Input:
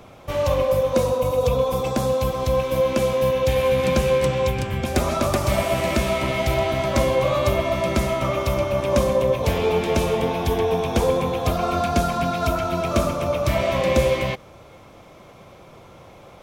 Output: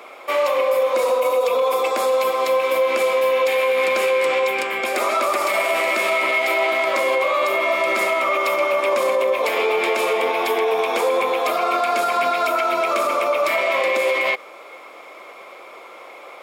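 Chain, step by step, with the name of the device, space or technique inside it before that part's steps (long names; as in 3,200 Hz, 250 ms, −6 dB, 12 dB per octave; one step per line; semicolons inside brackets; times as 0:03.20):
laptop speaker (high-pass filter 370 Hz 24 dB per octave; parametric band 1,200 Hz +6.5 dB 0.37 octaves; parametric band 2,200 Hz +10 dB 0.35 octaves; brickwall limiter −16 dBFS, peak gain reduction 9 dB)
0:01.62–0:02.24: high-pass filter 190 Hz
notch filter 6,000 Hz, Q 8.1
level +5 dB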